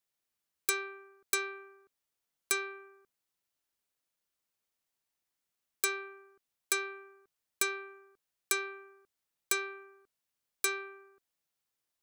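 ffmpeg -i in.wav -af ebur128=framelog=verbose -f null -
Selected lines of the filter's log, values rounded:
Integrated loudness:
  I:         -34.2 LUFS
  Threshold: -46.1 LUFS
Loudness range:
  LRA:         5.9 LU
  Threshold: -58.3 LUFS
  LRA low:   -41.9 LUFS
  LRA high:  -36.0 LUFS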